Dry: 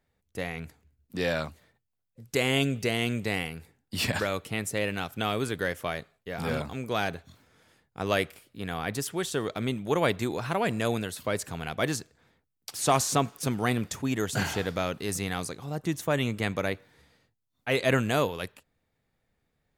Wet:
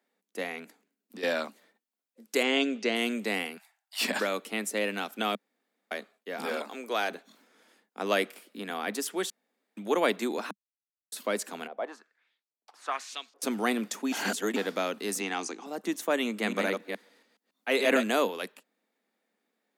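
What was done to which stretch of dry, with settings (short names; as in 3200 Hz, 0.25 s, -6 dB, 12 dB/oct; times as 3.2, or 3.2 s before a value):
0.64–1.23 compressor 3:1, threshold -40 dBFS
2.43–2.96 LPF 6400 Hz 24 dB/oct
3.57–4.01 brick-wall FIR high-pass 620 Hz
5.35–5.91 room tone
6.45–7.1 HPF 350 Hz
8.23–8.7 three-band squash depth 70%
9.3–9.77 room tone
10.51–11.12 mute
11.67–13.42 LFO band-pass saw up 1.2 Hz 480–5100 Hz
14.12–14.56 reverse
15.2–15.66 speaker cabinet 200–7700 Hz, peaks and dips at 330 Hz +7 dB, 570 Hz -9 dB, 820 Hz +6 dB, 2700 Hz +5 dB, 4000 Hz -7 dB, 6100 Hz +8 dB
16.25–18.04 reverse delay 0.14 s, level -4 dB
whole clip: steep high-pass 200 Hz 72 dB/oct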